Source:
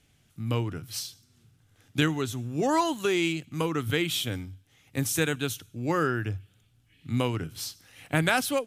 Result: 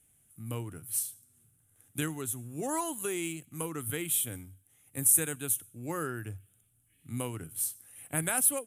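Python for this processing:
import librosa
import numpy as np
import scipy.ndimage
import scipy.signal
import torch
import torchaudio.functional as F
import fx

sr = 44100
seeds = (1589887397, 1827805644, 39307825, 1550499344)

y = fx.high_shelf_res(x, sr, hz=7000.0, db=14.0, q=3.0)
y = F.gain(torch.from_numpy(y), -9.0).numpy()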